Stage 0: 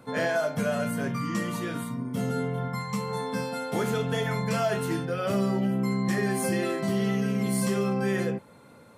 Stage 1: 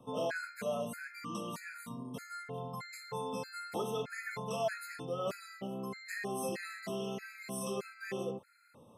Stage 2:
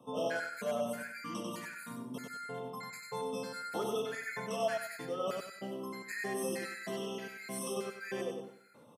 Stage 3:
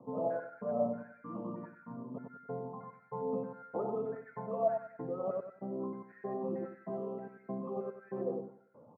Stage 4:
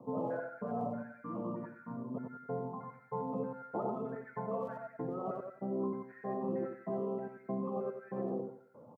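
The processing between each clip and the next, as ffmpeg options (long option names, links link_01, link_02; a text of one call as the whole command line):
ffmpeg -i in.wav -filter_complex "[0:a]acrossover=split=340|1200|6200[link_01][link_02][link_03][link_04];[link_01]acompressor=threshold=-37dB:ratio=20[link_05];[link_05][link_02][link_03][link_04]amix=inputs=4:normalize=0,afftfilt=real='re*gt(sin(2*PI*1.6*pts/sr)*(1-2*mod(floor(b*sr/1024/1300),2)),0)':imag='im*gt(sin(2*PI*1.6*pts/sr)*(1-2*mod(floor(b*sr/1024/1300),2)),0)':win_size=1024:overlap=0.75,volume=-5.5dB" out.wav
ffmpeg -i in.wav -af "highpass=160,aecho=1:1:95|190|285|380:0.631|0.189|0.0568|0.017" out.wav
ffmpeg -i in.wav -af "lowpass=frequency=1000:width=0.5412,lowpass=frequency=1000:width=1.3066,aphaser=in_gain=1:out_gain=1:delay=2:decay=0.33:speed=1.2:type=triangular,volume=1dB" out.wav
ffmpeg -i in.wav -af "afftfilt=real='re*lt(hypot(re,im),0.141)':imag='im*lt(hypot(re,im),0.141)':win_size=1024:overlap=0.75,aecho=1:1:87:0.251,volume=2.5dB" out.wav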